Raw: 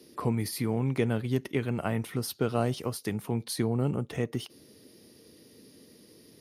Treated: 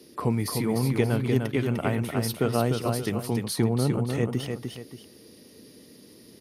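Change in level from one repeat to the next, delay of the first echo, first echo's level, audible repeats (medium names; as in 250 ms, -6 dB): no regular repeats, 300 ms, -5.0 dB, 2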